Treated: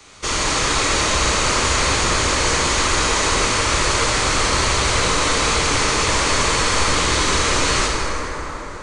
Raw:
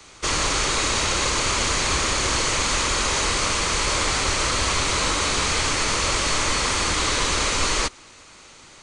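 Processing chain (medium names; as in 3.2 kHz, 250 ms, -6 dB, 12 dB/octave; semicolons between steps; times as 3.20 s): plate-style reverb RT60 4.9 s, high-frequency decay 0.4×, DRR -3 dB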